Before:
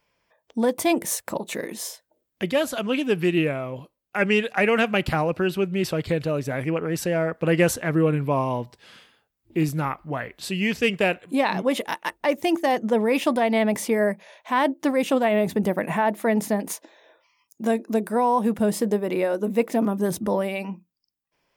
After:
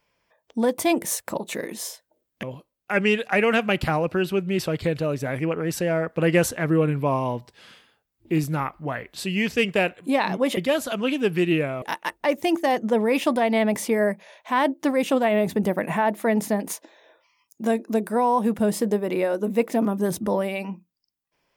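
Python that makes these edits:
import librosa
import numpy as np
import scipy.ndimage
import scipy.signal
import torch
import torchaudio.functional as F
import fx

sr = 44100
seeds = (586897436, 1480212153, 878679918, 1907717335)

y = fx.edit(x, sr, fx.move(start_s=2.43, length_s=1.25, to_s=11.82), tone=tone)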